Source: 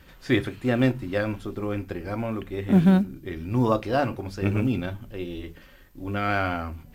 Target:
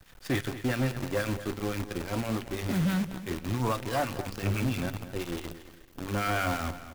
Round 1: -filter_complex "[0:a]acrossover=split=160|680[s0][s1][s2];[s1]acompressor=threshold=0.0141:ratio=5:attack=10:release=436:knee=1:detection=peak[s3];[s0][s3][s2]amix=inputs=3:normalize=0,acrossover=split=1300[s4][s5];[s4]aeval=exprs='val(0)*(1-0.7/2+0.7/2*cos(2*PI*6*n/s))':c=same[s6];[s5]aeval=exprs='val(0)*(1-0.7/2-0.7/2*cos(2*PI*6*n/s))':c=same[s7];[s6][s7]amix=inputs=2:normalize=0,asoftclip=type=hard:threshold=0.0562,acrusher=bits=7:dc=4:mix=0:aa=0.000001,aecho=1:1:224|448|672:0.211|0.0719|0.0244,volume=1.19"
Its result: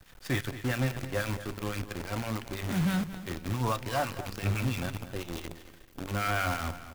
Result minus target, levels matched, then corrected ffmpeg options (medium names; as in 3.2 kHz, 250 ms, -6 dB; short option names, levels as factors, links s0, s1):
compression: peak gain reduction +7 dB
-filter_complex "[0:a]acrossover=split=160|680[s0][s1][s2];[s1]acompressor=threshold=0.0376:ratio=5:attack=10:release=436:knee=1:detection=peak[s3];[s0][s3][s2]amix=inputs=3:normalize=0,acrossover=split=1300[s4][s5];[s4]aeval=exprs='val(0)*(1-0.7/2+0.7/2*cos(2*PI*6*n/s))':c=same[s6];[s5]aeval=exprs='val(0)*(1-0.7/2-0.7/2*cos(2*PI*6*n/s))':c=same[s7];[s6][s7]amix=inputs=2:normalize=0,asoftclip=type=hard:threshold=0.0562,acrusher=bits=7:dc=4:mix=0:aa=0.000001,aecho=1:1:224|448|672:0.211|0.0719|0.0244,volume=1.19"